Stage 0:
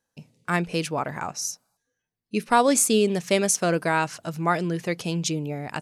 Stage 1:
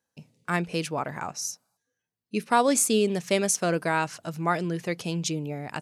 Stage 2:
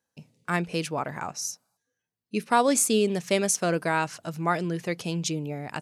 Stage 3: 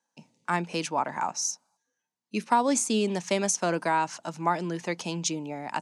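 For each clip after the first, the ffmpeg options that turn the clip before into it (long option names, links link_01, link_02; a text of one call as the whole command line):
ffmpeg -i in.wav -af "highpass=59,volume=-2.5dB" out.wav
ffmpeg -i in.wav -af anull out.wav
ffmpeg -i in.wav -filter_complex "[0:a]acrossover=split=450[link_01][link_02];[link_02]acompressor=threshold=-25dB:ratio=6[link_03];[link_01][link_03]amix=inputs=2:normalize=0,highpass=frequency=150:width=0.5412,highpass=frequency=150:width=1.3066,equalizer=frequency=150:width_type=q:width=4:gain=-6,equalizer=frequency=440:width_type=q:width=4:gain=-5,equalizer=frequency=910:width_type=q:width=4:gain=10,equalizer=frequency=6300:width_type=q:width=4:gain=5,lowpass=frequency=9500:width=0.5412,lowpass=frequency=9500:width=1.3066" out.wav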